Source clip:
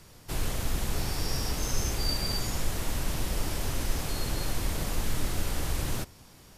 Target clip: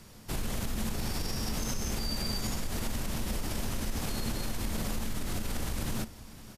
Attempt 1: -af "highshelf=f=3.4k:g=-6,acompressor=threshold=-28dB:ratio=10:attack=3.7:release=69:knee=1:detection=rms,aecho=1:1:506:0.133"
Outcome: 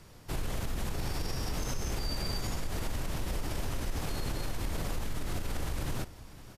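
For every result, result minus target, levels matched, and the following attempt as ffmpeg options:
8000 Hz band -2.5 dB; 250 Hz band -2.5 dB
-af "acompressor=threshold=-28dB:ratio=10:attack=3.7:release=69:knee=1:detection=rms,aecho=1:1:506:0.133"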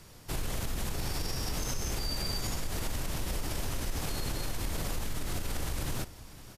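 250 Hz band -4.0 dB
-af "acompressor=threshold=-28dB:ratio=10:attack=3.7:release=69:knee=1:detection=rms,equalizer=f=220:t=o:w=0.22:g=12,aecho=1:1:506:0.133"

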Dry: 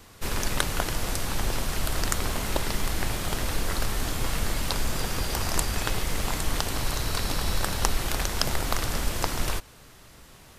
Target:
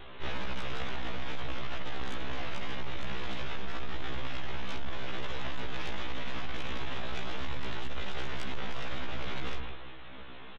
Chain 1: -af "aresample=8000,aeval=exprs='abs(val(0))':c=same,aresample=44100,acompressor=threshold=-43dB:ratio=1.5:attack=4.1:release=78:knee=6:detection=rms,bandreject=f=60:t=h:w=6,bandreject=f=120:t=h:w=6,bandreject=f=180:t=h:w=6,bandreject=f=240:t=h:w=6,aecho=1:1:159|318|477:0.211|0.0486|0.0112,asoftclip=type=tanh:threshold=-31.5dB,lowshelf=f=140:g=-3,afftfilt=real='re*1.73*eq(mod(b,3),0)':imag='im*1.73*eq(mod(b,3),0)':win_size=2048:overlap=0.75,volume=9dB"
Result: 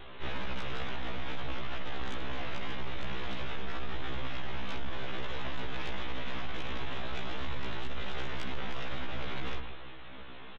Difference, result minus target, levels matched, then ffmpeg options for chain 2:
compressor: peak gain reduction +3 dB
-af "aresample=8000,aeval=exprs='abs(val(0))':c=same,aresample=44100,acompressor=threshold=-33.5dB:ratio=1.5:attack=4.1:release=78:knee=6:detection=rms,bandreject=f=60:t=h:w=6,bandreject=f=120:t=h:w=6,bandreject=f=180:t=h:w=6,bandreject=f=240:t=h:w=6,aecho=1:1:159|318|477:0.211|0.0486|0.0112,asoftclip=type=tanh:threshold=-31.5dB,lowshelf=f=140:g=-3,afftfilt=real='re*1.73*eq(mod(b,3),0)':imag='im*1.73*eq(mod(b,3),0)':win_size=2048:overlap=0.75,volume=9dB"

